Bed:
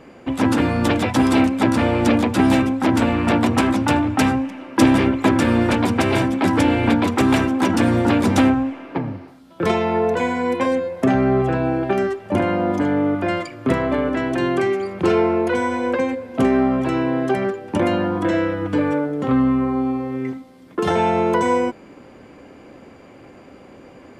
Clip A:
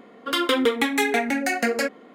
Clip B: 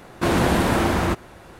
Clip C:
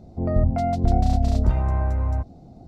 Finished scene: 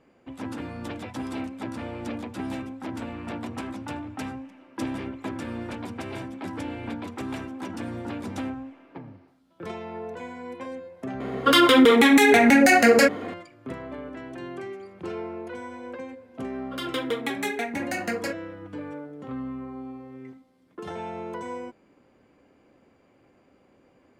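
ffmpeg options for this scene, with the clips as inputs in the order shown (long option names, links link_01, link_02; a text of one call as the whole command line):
ffmpeg -i bed.wav -i cue0.wav -filter_complex "[1:a]asplit=2[link_01][link_02];[0:a]volume=-17dB[link_03];[link_01]alimiter=level_in=19dB:limit=-1dB:release=50:level=0:latency=1[link_04];[link_02]dynaudnorm=framelen=170:gausssize=5:maxgain=8dB[link_05];[link_04]atrim=end=2.14,asetpts=PTS-STARTPTS,volume=-6.5dB,afade=type=in:duration=0.004:curve=hsin,afade=type=out:start_time=2.136:duration=0.004:curve=hsin,adelay=11200[link_06];[link_05]atrim=end=2.14,asetpts=PTS-STARTPTS,volume=-13dB,afade=type=in:duration=0.004:curve=hsin,afade=type=out:start_time=2.136:duration=0.004:curve=hsin,adelay=16450[link_07];[link_03][link_06][link_07]amix=inputs=3:normalize=0" out.wav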